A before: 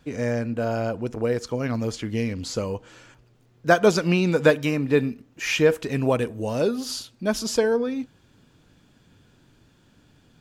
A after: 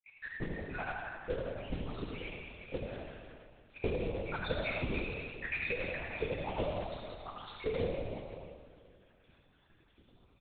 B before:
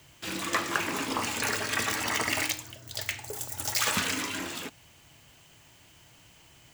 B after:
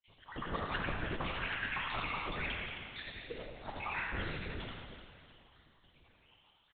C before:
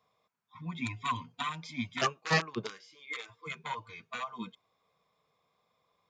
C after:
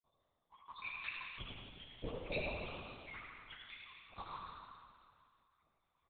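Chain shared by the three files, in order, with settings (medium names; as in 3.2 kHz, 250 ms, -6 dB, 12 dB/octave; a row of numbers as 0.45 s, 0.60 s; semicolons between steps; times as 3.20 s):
random holes in the spectrogram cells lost 83%; compression 6:1, threshold -30 dBFS; modulation noise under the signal 11 dB; flange 1.7 Hz, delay 2.6 ms, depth 1.6 ms, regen -57%; on a send: frequency-shifting echo 87 ms, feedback 54%, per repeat +77 Hz, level -5 dB; on the sum: Schroeder reverb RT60 2.2 s, combs from 29 ms, DRR 0.5 dB; LPC vocoder at 8 kHz whisper; trim +1 dB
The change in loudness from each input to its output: -15.0 LU, -9.5 LU, -10.5 LU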